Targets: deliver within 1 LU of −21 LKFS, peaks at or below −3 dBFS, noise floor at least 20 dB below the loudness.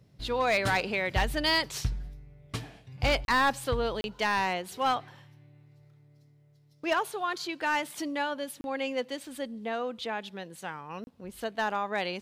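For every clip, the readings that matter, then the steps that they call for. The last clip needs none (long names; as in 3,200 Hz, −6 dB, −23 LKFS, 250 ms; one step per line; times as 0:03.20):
share of clipped samples 0.7%; peaks flattened at −19.5 dBFS; number of dropouts 4; longest dropout 31 ms; integrated loudness −30.5 LKFS; sample peak −19.5 dBFS; target loudness −21.0 LKFS
→ clipped peaks rebuilt −19.5 dBFS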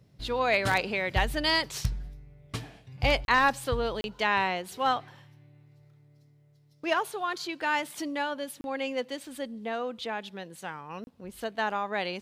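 share of clipped samples 0.0%; number of dropouts 4; longest dropout 31 ms
→ repair the gap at 0:03.25/0:04.01/0:08.61/0:11.04, 31 ms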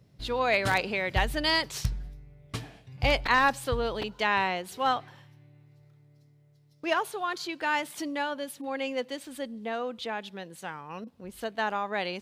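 number of dropouts 0; integrated loudness −29.5 LKFS; sample peak −10.5 dBFS; target loudness −21.0 LKFS
→ level +8.5 dB
brickwall limiter −3 dBFS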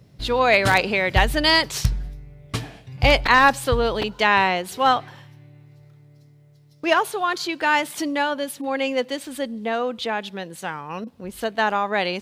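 integrated loudness −21.0 LKFS; sample peak −3.0 dBFS; background noise floor −52 dBFS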